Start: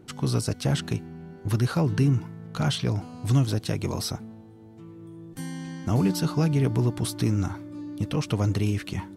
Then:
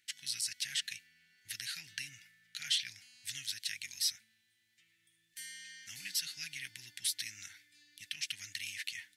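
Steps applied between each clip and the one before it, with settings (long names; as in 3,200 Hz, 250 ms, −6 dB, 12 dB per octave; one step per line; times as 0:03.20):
elliptic high-pass filter 1,800 Hz, stop band 40 dB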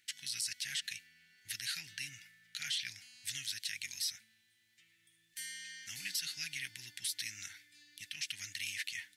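brickwall limiter −28.5 dBFS, peak gain reduction 9.5 dB
level +2.5 dB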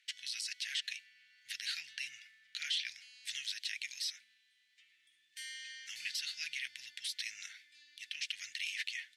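resonant band-pass 2,900 Hz, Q 0.95
level +2.5 dB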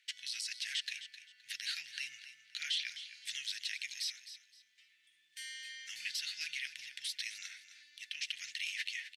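repeating echo 260 ms, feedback 24%, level −12.5 dB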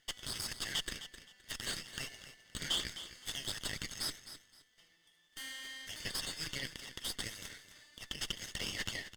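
lower of the sound and its delayed copy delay 0.62 ms
level +2 dB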